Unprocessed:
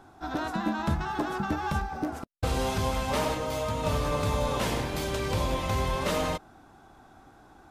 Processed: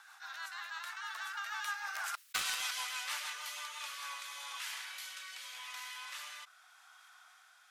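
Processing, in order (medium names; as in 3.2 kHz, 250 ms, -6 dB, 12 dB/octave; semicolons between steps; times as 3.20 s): Doppler pass-by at 2.19 s, 14 m/s, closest 2 m; inverse Chebyshev high-pass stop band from 290 Hz, stop band 70 dB; treble shelf 9.2 kHz +2 dB; in parallel at -5 dB: bit crusher 6-bit; on the sum: rotary cabinet horn 6.3 Hz, later 0.85 Hz, at 3.49 s; level flattener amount 50%; trim +8.5 dB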